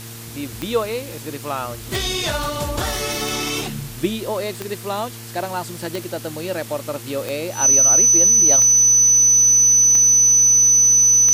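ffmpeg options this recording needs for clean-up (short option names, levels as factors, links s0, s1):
-af "adeclick=t=4,bandreject=f=114.3:t=h:w=4,bandreject=f=228.6:t=h:w=4,bandreject=f=342.9:t=h:w=4,bandreject=f=457.2:t=h:w=4,bandreject=f=6000:w=30,afwtdn=0.014"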